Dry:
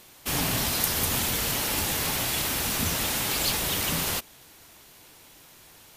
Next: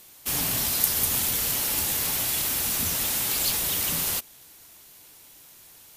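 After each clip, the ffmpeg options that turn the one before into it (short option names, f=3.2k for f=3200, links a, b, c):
-af "aemphasis=mode=production:type=cd,volume=-4.5dB"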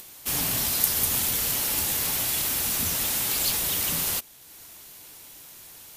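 -af "acompressor=mode=upward:threshold=-39dB:ratio=2.5"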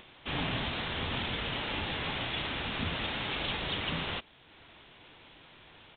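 -af "aresample=8000,aresample=44100"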